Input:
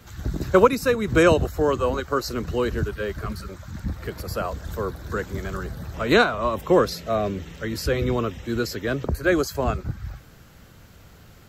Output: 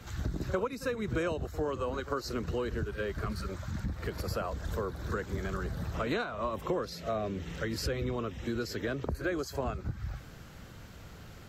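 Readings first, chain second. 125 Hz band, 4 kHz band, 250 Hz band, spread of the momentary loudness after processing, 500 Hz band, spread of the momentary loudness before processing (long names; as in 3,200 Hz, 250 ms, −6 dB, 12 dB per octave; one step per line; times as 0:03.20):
−7.5 dB, −10.5 dB, −10.5 dB, 8 LU, −12.0 dB, 14 LU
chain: high-shelf EQ 12,000 Hz −10.5 dB
downward compressor 5 to 1, threshold −31 dBFS, peak gain reduction 19 dB
on a send: backwards echo 47 ms −14.5 dB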